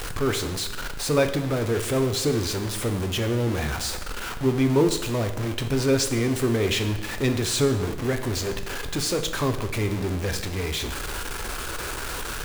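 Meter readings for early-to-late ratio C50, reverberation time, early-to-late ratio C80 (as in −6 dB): 9.5 dB, 1.0 s, 11.5 dB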